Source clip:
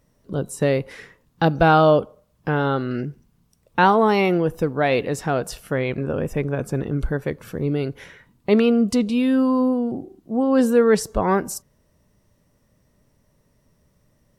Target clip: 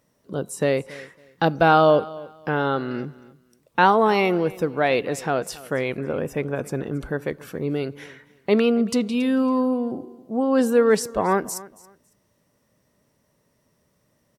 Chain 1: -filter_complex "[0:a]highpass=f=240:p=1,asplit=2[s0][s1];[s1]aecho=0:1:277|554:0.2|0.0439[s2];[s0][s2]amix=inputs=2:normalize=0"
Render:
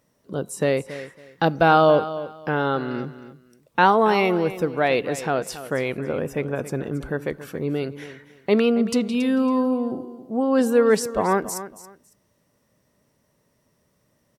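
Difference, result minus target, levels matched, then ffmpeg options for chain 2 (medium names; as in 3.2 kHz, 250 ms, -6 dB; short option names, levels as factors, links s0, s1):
echo-to-direct +6 dB
-filter_complex "[0:a]highpass=f=240:p=1,asplit=2[s0][s1];[s1]aecho=0:1:277|554:0.1|0.022[s2];[s0][s2]amix=inputs=2:normalize=0"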